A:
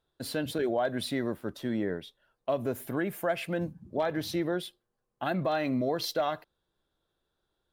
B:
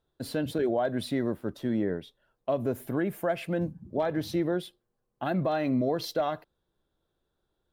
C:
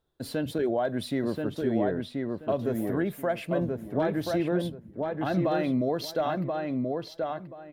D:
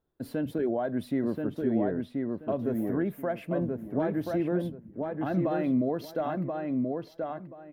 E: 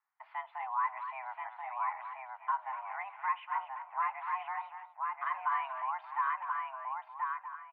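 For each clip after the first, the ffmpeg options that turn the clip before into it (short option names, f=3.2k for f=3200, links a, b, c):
-af "tiltshelf=f=840:g=3.5"
-filter_complex "[0:a]asplit=2[a][b];[b]adelay=1031,lowpass=f=2.7k:p=1,volume=-3dB,asplit=2[c][d];[d]adelay=1031,lowpass=f=2.7k:p=1,volume=0.22,asplit=2[e][f];[f]adelay=1031,lowpass=f=2.7k:p=1,volume=0.22[g];[a][c][e][g]amix=inputs=4:normalize=0"
-af "equalizer=f=250:t=o:w=1:g=5,equalizer=f=4k:t=o:w=1:g=-8,equalizer=f=8k:t=o:w=1:g=-7,volume=-3.5dB"
-filter_complex "[0:a]asplit=2[a][b];[b]adelay=240,highpass=300,lowpass=3.4k,asoftclip=type=hard:threshold=-24.5dB,volume=-9dB[c];[a][c]amix=inputs=2:normalize=0,highpass=f=580:t=q:w=0.5412,highpass=f=580:t=q:w=1.307,lowpass=f=2.3k:t=q:w=0.5176,lowpass=f=2.3k:t=q:w=0.7071,lowpass=f=2.3k:t=q:w=1.932,afreqshift=390,volume=1dB"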